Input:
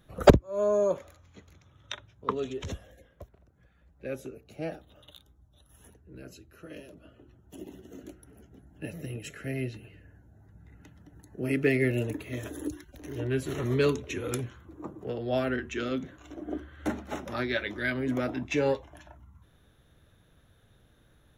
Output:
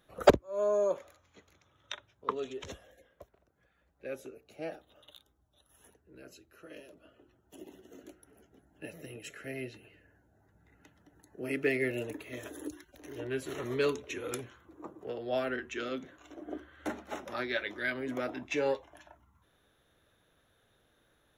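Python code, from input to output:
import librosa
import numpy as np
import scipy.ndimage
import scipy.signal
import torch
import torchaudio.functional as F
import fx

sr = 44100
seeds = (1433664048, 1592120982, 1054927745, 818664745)

y = fx.bass_treble(x, sr, bass_db=-12, treble_db=-1)
y = y * librosa.db_to_amplitude(-2.5)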